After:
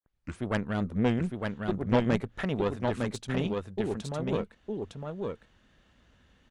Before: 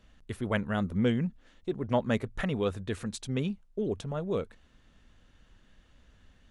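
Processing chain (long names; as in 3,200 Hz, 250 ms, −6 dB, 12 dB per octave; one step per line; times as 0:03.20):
turntable start at the beginning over 0.40 s
high-pass filter 84 Hz 6 dB per octave
high-shelf EQ 6,800 Hz −6.5 dB
single-tap delay 908 ms −3.5 dB
harmonic generator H 4 −14 dB, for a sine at −13.5 dBFS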